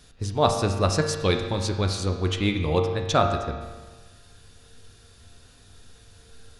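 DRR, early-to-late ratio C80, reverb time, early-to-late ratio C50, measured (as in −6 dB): 3.0 dB, 7.0 dB, 1.4 s, 5.5 dB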